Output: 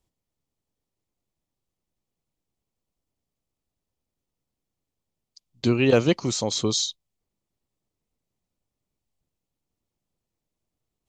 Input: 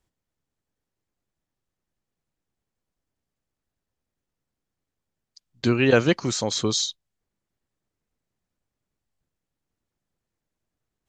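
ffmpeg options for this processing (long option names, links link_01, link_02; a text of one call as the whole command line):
ffmpeg -i in.wav -af "equalizer=frequency=1600:width=2.4:gain=-9.5,asoftclip=type=hard:threshold=-8dB" out.wav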